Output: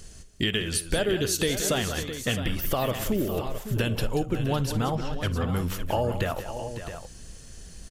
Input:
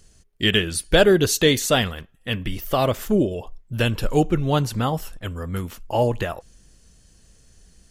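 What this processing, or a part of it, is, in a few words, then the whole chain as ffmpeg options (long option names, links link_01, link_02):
serial compression, peaks first: -filter_complex "[0:a]acompressor=threshold=-28dB:ratio=4,acompressor=threshold=-39dB:ratio=1.5,asettb=1/sr,asplit=3[link_01][link_02][link_03];[link_01]atrim=end=4.954[link_04];[link_02]atrim=start=4.95:end=5.52,asetpts=PTS-STARTPTS,afade=type=in:duration=0.004:curve=qsin,afade=type=out:start_time=0.566:duration=0.004:curve=qsin,lowpass=frequency=5300:width=0.5412,lowpass=frequency=5300:width=1.3066[link_05];[link_03]atrim=start=5.516[link_06];[link_04][link_05]acrossfade=duration=0.004:curve1=hsin:curve2=qsin[link_07];[link_07][link_06]acrossfade=duration=0.004:curve1=qsin:curve2=hsin,aecho=1:1:56|183|557|663:0.106|0.266|0.266|0.282,volume=8dB"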